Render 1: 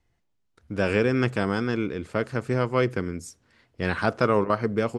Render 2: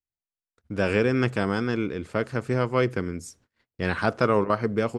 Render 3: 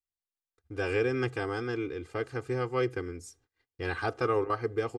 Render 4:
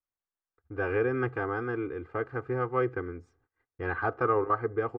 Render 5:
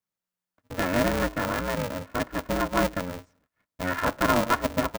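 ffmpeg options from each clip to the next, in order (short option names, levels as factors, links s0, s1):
-af "agate=range=0.0355:threshold=0.00141:ratio=16:detection=peak"
-af "aecho=1:1:2.5:0.96,volume=0.355"
-af "lowpass=f=1400:t=q:w=1.6"
-af "aeval=exprs='val(0)*sgn(sin(2*PI*180*n/s))':c=same,volume=1.5"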